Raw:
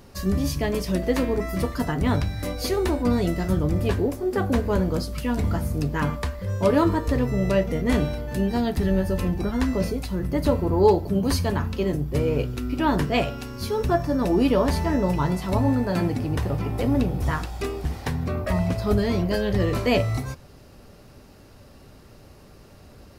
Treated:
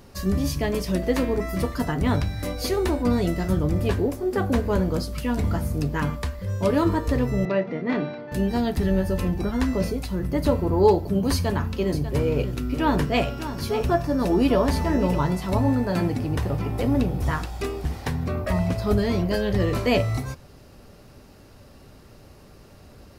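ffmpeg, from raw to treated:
ffmpeg -i in.wav -filter_complex "[0:a]asettb=1/sr,asplit=3[link_01][link_02][link_03];[link_01]atrim=end=6.004[link_04];[link_02]atrim=start=6:end=6.86,asetpts=PTS-STARTPTS,afade=type=in:duration=0.004:curve=qsin,afade=type=out:start_time=0.856:duration=0.004:curve=qsin,equalizer=frequency=830:width_type=o:width=2.8:gain=-3[link_05];[link_03]atrim=start=6.856[link_06];[link_04][link_05]acrossfade=duration=0.004:curve1=hsin:curve2=qsin[link_07];[link_07][link_06]acrossfade=duration=0.004:curve1=qsin:curve2=hsin,asettb=1/sr,asplit=3[link_08][link_09][link_10];[link_08]atrim=end=7.454[link_11];[link_09]atrim=start=7.45:end=8.32,asetpts=PTS-STARTPTS,afade=type=in:duration=0.004:curve=qsin,afade=type=out:start_time=0.866:duration=0.004:curve=qsin,highpass=frequency=170:width=0.5412,highpass=frequency=170:width=1.3066,equalizer=frequency=220:width_type=q:width=4:gain=-4,equalizer=frequency=500:width_type=q:width=4:gain=-4,equalizer=frequency=3100:width_type=q:width=4:gain=-8,lowpass=frequency=3800:width=0.5412,lowpass=frequency=3800:width=1.3066[link_12];[link_10]atrim=start=8.316[link_13];[link_11][link_12]acrossfade=duration=0.004:curve1=hsin:curve2=qsin[link_14];[link_14][link_13]acrossfade=duration=0.004:curve1=qsin:curve2=hsin,asettb=1/sr,asplit=3[link_15][link_16][link_17];[link_15]atrim=end=11.334[link_18];[link_16]atrim=start=11.33:end=15.21,asetpts=PTS-STARTPTS,afade=type=in:duration=0.004:curve=qsin,afade=type=out:start_time=3.876:duration=0.004:curve=qsin,aecho=1:1:594:0.266,atrim=end_sample=171108[link_19];[link_17]atrim=start=15.206[link_20];[link_18][link_19]acrossfade=duration=0.004:curve1=hsin:curve2=qsin[link_21];[link_21][link_20]acrossfade=duration=0.004:curve1=qsin:curve2=hsin" out.wav

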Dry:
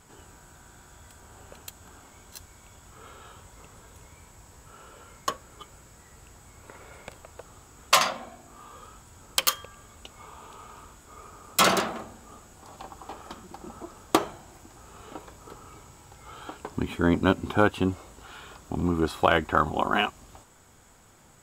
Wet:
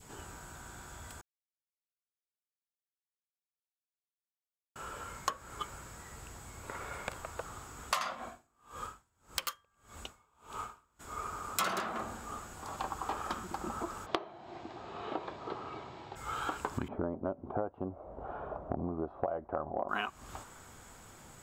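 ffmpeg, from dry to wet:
ffmpeg -i in.wav -filter_complex "[0:a]asettb=1/sr,asplit=3[link_01][link_02][link_03];[link_01]atrim=end=1.214[link_04];[link_02]atrim=start=1.21:end=4.76,asetpts=PTS-STARTPTS,afade=type=in:duration=0.004:curve=qsin,afade=type=out:start_time=3.546:duration=0.004:curve=qsin,acrusher=bits=2:mix=0:aa=0.5[link_05];[link_03]atrim=start=4.756[link_06];[link_04][link_05]acrossfade=duration=0.004:curve1=hsin:curve2=qsin[link_07];[link_07][link_06]acrossfade=duration=0.004:curve1=qsin:curve2=hsin,asplit=3[link_08][link_09][link_10];[link_08]afade=type=out:start_time=8.14:duration=0.02[link_11];[link_09]aeval=exprs='val(0)*pow(10,-31*(0.5-0.5*cos(2*PI*1.7*n/s))/20)':channel_layout=same,afade=type=in:start_time=8.14:duration=0.02,afade=type=out:start_time=10.99:duration=0.02[link_12];[link_10]afade=type=in:start_time=10.99:duration=0.02[link_13];[link_11][link_12][link_13]amix=inputs=3:normalize=0,asplit=3[link_14][link_15][link_16];[link_14]afade=type=out:start_time=14.05:duration=0.02[link_17];[link_15]highpass=120,equalizer=frequency=360:width_type=q:width=4:gain=7,equalizer=frequency=680:width_type=q:width=4:gain=8,equalizer=frequency=1400:width_type=q:width=4:gain=-7,equalizer=frequency=4000:width_type=q:width=4:gain=4,lowpass=frequency=4300:width=0.5412,lowpass=frequency=4300:width=1.3066,afade=type=in:start_time=14.05:duration=0.02,afade=type=out:start_time=16.15:duration=0.02[link_18];[link_16]afade=type=in:start_time=16.15:duration=0.02[link_19];[link_17][link_18][link_19]amix=inputs=3:normalize=0,asettb=1/sr,asplit=3[link_20][link_21][link_22];[link_20]atrim=end=16.884[link_23];[link_21]atrim=start=16.88:end=19.89,asetpts=PTS-STARTPTS,afade=type=in:duration=0.004:curve=qsin,afade=type=out:start_time=3.006:duration=0.004:curve=qsin,lowpass=frequency=640:width_type=q:width=4.4[link_24];[link_22]atrim=start=19.886[link_25];[link_23][link_24]acrossfade=duration=0.004:curve1=hsin:curve2=qsin[link_26];[link_26][link_25]acrossfade=duration=0.004:curve1=qsin:curve2=hsin,acompressor=threshold=-35dB:ratio=12,adynamicequalizer=threshold=0.00141:dfrequency=1300:dqfactor=1.2:tfrequency=1300:tqfactor=1.2:attack=5:release=100:ratio=0.375:range=3.5:mode=boostabove:tftype=bell,volume=2dB" out.wav

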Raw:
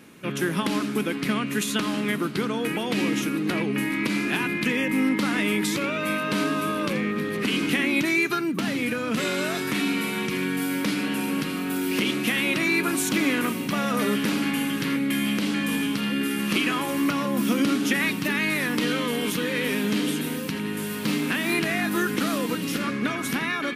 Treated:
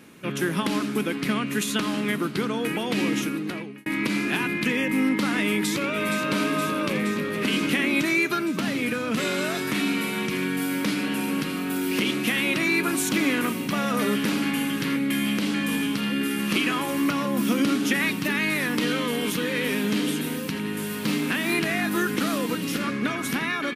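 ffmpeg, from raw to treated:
ffmpeg -i in.wav -filter_complex "[0:a]asplit=2[link_01][link_02];[link_02]afade=type=in:start_time=5.46:duration=0.01,afade=type=out:start_time=6.26:duration=0.01,aecho=0:1:470|940|1410|1880|2350|2820|3290|3760|4230|4700|5170|5640:0.398107|0.318486|0.254789|0.203831|0.163065|0.130452|0.104361|0.0834891|0.0667913|0.053433|0.0427464|0.0341971[link_03];[link_01][link_03]amix=inputs=2:normalize=0,asplit=2[link_04][link_05];[link_04]atrim=end=3.86,asetpts=PTS-STARTPTS,afade=type=out:start_time=3.2:duration=0.66[link_06];[link_05]atrim=start=3.86,asetpts=PTS-STARTPTS,afade=type=in:duration=0.004:curve=hsin[link_07];[link_06][link_07]concat=n=2:v=0:a=1" out.wav

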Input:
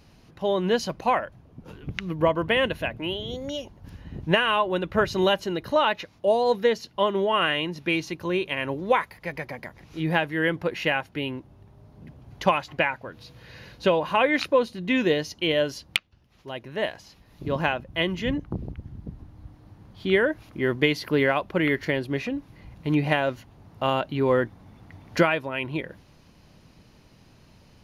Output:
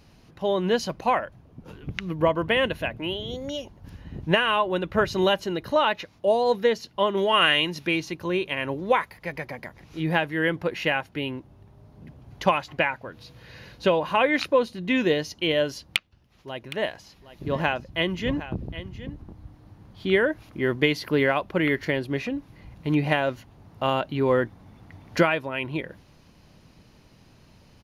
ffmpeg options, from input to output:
ffmpeg -i in.wav -filter_complex "[0:a]asettb=1/sr,asplit=3[link_01][link_02][link_03];[link_01]atrim=end=7.174[link_04];[link_02]atrim=start=7.17:end=7.87,asetpts=PTS-STARTPTS,afade=type=in:duration=0.004:curve=qsin,afade=type=out:start_time=0.696:duration=0.004:curve=qsin,highshelf=frequency=2000:gain=9.5[link_05];[link_03]atrim=start=7.866[link_06];[link_04][link_05]acrossfade=duration=0.004:curve1=hsin:curve2=qsin[link_07];[link_07][link_06]acrossfade=duration=0.004:curve1=qsin:curve2=hsin,asplit=3[link_08][link_09][link_10];[link_08]afade=type=out:start_time=16.61:duration=0.02[link_11];[link_09]aecho=1:1:764:0.2,afade=type=in:start_time=16.61:duration=0.02,afade=type=out:start_time=19.32:duration=0.02[link_12];[link_10]afade=type=in:start_time=19.32:duration=0.02[link_13];[link_11][link_12][link_13]amix=inputs=3:normalize=0" out.wav

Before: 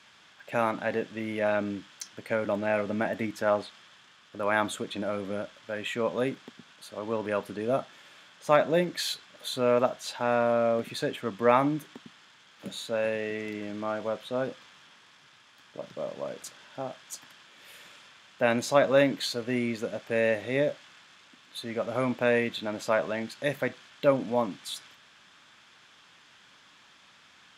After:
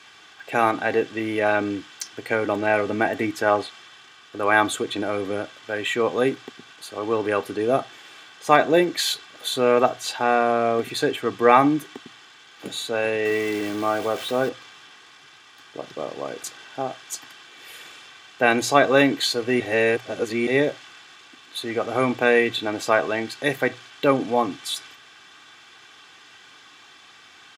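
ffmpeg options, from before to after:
ffmpeg -i in.wav -filter_complex "[0:a]asettb=1/sr,asplit=3[link_01][link_02][link_03];[link_01]atrim=end=13.254[link_04];[link_02]atrim=start=13.25:end=14.49,asetpts=PTS-STARTPTS,afade=type=in:duration=0.004:curve=qsin,afade=type=out:start_time=1.236:duration=0.004:curve=qsin,aeval=exprs='val(0)+0.5*0.0106*sgn(val(0))':channel_layout=same[link_05];[link_03]atrim=start=14.486[link_06];[link_04][link_05]acrossfade=duration=0.004:curve1=hsin:curve2=qsin[link_07];[link_07][link_06]acrossfade=duration=0.004:curve1=qsin:curve2=hsin,asplit=3[link_08][link_09][link_10];[link_08]atrim=end=19.602[link_11];[link_09]atrim=start=19.598:end=20.472,asetpts=PTS-STARTPTS,areverse[link_12];[link_10]atrim=start=20.468[link_13];[link_11][link_12]acrossfade=duration=0.004:curve1=hsin:curve2=hsin[link_14];[link_14][link_13]acrossfade=duration=0.004:curve1=hsin:curve2=hsin,highpass=88,bandreject=frequency=60:width_type=h:width=6,bandreject=frequency=120:width_type=h:width=6,aecho=1:1:2.6:0.59,volume=7dB" out.wav

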